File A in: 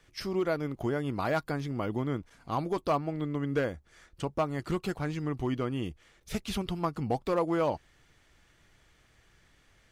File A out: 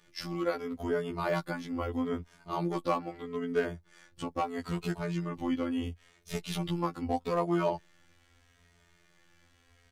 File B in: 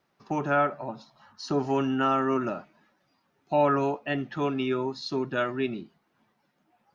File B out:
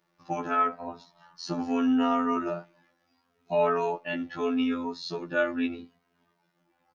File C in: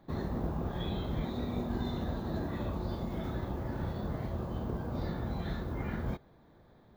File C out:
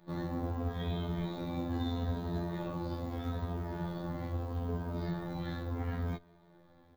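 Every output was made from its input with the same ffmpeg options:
-filter_complex "[0:a]afftfilt=real='hypot(re,im)*cos(PI*b)':imag='0':win_size=2048:overlap=0.75,asplit=2[a][b];[b]adelay=2.9,afreqshift=-0.77[c];[a][c]amix=inputs=2:normalize=1,volume=5.5dB"

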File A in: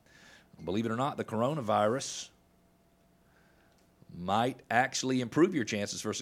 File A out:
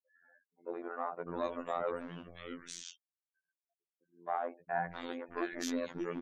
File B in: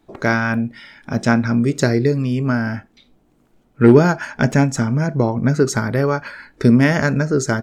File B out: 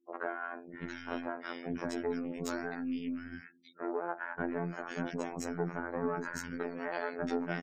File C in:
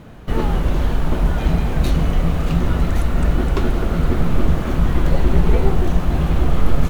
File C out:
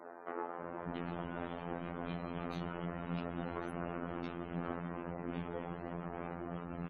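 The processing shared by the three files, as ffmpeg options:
-filter_complex "[0:a]acompressor=threshold=-24dB:ratio=12,highpass=42,highshelf=f=3.7k:g=10,aeval=exprs='(tanh(14.1*val(0)+0.7)-tanh(0.7))/14.1':c=same,acrossover=split=180 2500:gain=0.0891 1 0.224[a][b][c];[a][b][c]amix=inputs=3:normalize=0,afftfilt=real='re*gte(hypot(re,im),0.00251)':imag='im*gte(hypot(re,im),0.00251)':win_size=1024:overlap=0.75,acrossover=split=330|1900[d][e][f];[d]adelay=590[g];[f]adelay=680[h];[g][e][h]amix=inputs=3:normalize=0,afftfilt=real='hypot(re,im)*cos(PI*b)':imag='0':win_size=2048:overlap=0.75,volume=4.5dB"

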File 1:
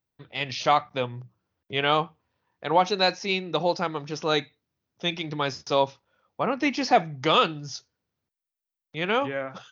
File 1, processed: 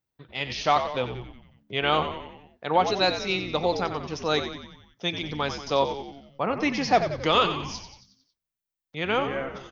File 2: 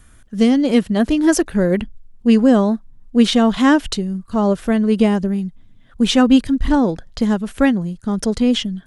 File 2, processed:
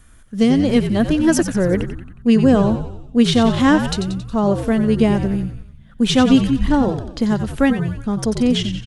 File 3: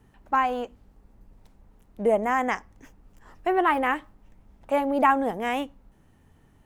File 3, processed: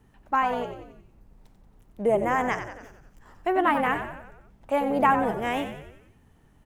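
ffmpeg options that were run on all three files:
-filter_complex "[0:a]asplit=7[a][b][c][d][e][f][g];[b]adelay=91,afreqshift=-68,volume=-9dB[h];[c]adelay=182,afreqshift=-136,volume=-14.2dB[i];[d]adelay=273,afreqshift=-204,volume=-19.4dB[j];[e]adelay=364,afreqshift=-272,volume=-24.6dB[k];[f]adelay=455,afreqshift=-340,volume=-29.8dB[l];[g]adelay=546,afreqshift=-408,volume=-35dB[m];[a][h][i][j][k][l][m]amix=inputs=7:normalize=0,volume=-1dB"

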